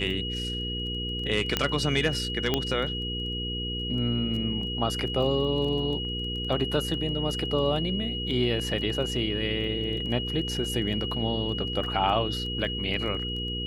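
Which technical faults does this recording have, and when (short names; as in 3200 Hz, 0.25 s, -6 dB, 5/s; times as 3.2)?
crackle 10/s -34 dBFS
hum 60 Hz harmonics 8 -34 dBFS
tone 2900 Hz -32 dBFS
1.57 pop -8 dBFS
2.54 pop -10 dBFS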